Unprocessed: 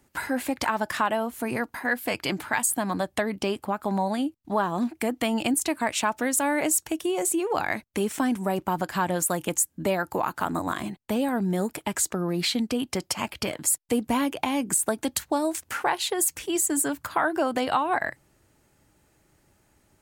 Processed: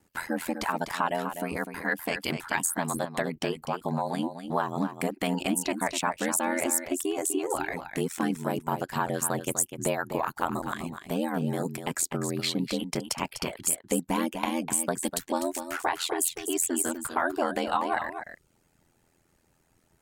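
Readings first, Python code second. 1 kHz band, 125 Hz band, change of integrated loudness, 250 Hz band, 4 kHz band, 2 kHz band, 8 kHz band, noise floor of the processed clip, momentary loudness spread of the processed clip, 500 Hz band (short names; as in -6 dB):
-3.0 dB, -0.5 dB, -3.0 dB, -3.5 dB, -3.0 dB, -3.0 dB, -2.5 dB, -68 dBFS, 6 LU, -3.0 dB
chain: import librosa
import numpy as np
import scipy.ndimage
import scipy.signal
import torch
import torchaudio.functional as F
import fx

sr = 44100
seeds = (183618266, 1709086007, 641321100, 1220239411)

y = fx.dereverb_blind(x, sr, rt60_s=0.53)
y = y + 10.0 ** (-9.0 / 20.0) * np.pad(y, (int(249 * sr / 1000.0), 0))[:len(y)]
y = y * np.sin(2.0 * np.pi * 42.0 * np.arange(len(y)) / sr)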